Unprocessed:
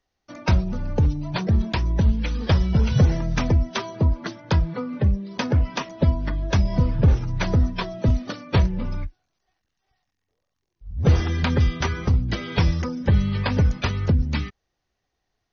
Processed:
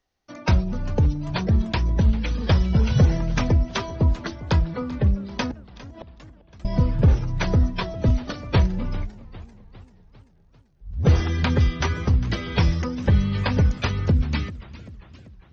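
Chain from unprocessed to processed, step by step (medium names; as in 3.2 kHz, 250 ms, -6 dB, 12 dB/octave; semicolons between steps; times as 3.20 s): 5.51–6.65 s: inverted gate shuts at -25 dBFS, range -29 dB; modulated delay 396 ms, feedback 55%, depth 218 cents, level -18 dB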